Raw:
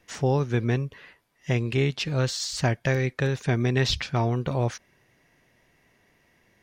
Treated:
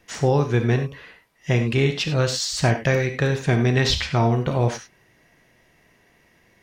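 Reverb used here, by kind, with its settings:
reverb whose tail is shaped and stops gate 120 ms flat, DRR 5.5 dB
level +4 dB

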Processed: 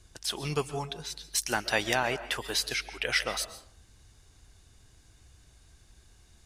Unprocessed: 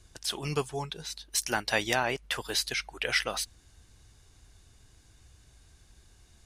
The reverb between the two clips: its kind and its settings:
comb and all-pass reverb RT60 0.64 s, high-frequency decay 0.5×, pre-delay 95 ms, DRR 13 dB

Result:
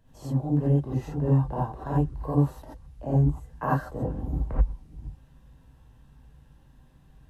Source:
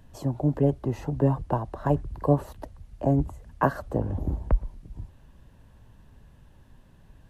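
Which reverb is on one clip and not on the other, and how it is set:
reverb whose tail is shaped and stops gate 110 ms rising, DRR −7.5 dB
level −11 dB

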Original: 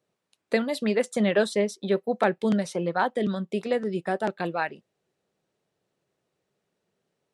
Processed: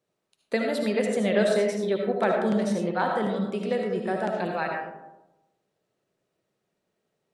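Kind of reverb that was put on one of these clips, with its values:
comb and all-pass reverb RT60 1 s, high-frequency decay 0.35×, pre-delay 35 ms, DRR 1 dB
level −2.5 dB

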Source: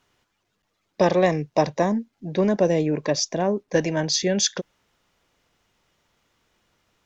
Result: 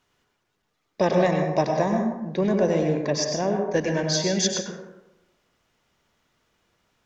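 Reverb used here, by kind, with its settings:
dense smooth reverb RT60 0.95 s, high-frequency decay 0.45×, pre-delay 85 ms, DRR 2 dB
level −3 dB

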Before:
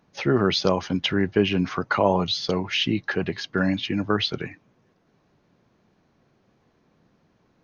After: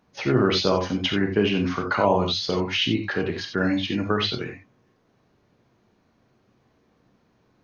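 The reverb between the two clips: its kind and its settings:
reverb whose tail is shaped and stops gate 110 ms flat, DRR 2.5 dB
level −1.5 dB

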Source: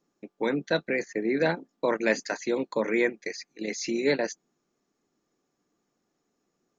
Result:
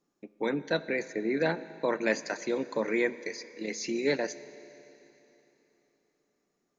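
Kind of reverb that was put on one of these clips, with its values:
four-comb reverb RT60 3.4 s, combs from 29 ms, DRR 15 dB
level −3 dB

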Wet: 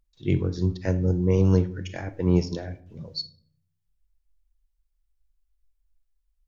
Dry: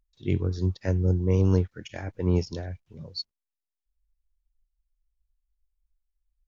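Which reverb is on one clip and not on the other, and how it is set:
rectangular room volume 830 cubic metres, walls furnished, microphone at 0.69 metres
level +2 dB

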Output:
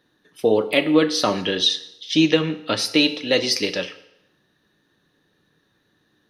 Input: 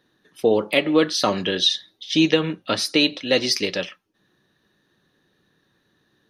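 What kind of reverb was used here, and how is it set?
feedback delay network reverb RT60 0.88 s, low-frequency decay 0.8×, high-frequency decay 0.9×, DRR 10.5 dB

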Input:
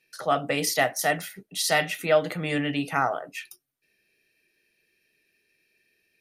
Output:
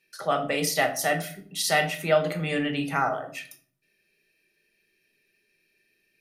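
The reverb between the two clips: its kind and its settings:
rectangular room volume 560 cubic metres, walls furnished, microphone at 1.2 metres
level −1.5 dB

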